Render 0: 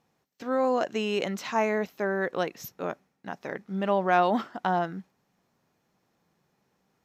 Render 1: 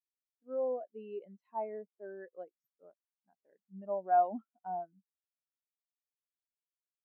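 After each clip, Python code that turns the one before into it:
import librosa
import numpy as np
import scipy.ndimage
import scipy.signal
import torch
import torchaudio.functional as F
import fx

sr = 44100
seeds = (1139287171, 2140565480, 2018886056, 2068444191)

y = fx.highpass(x, sr, hz=140.0, slope=6)
y = fx.spectral_expand(y, sr, expansion=2.5)
y = y * librosa.db_to_amplitude(-7.5)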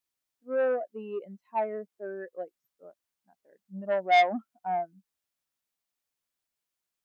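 y = fx.peak_eq(x, sr, hz=430.0, db=-2.5, octaves=0.21)
y = fx.transformer_sat(y, sr, knee_hz=1700.0)
y = y * librosa.db_to_amplitude(9.0)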